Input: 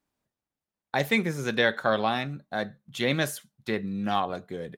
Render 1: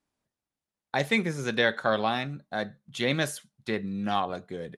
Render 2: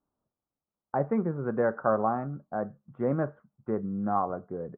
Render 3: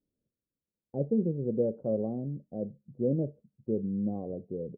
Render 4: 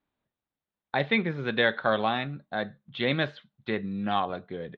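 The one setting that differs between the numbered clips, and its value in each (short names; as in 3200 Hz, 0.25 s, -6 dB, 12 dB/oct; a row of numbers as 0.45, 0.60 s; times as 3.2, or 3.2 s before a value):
elliptic low-pass, frequency: 11000, 1300, 520, 3800 Hz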